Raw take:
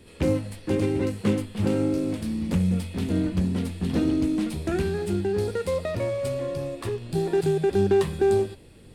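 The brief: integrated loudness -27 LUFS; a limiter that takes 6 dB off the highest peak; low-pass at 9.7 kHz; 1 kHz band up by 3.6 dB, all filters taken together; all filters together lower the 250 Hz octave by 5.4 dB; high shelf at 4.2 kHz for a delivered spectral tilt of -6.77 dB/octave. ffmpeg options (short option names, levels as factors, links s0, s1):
-af "lowpass=9700,equalizer=f=250:t=o:g=-8.5,equalizer=f=1000:t=o:g=6,highshelf=f=4200:g=-5.5,volume=1.41,alimiter=limit=0.15:level=0:latency=1"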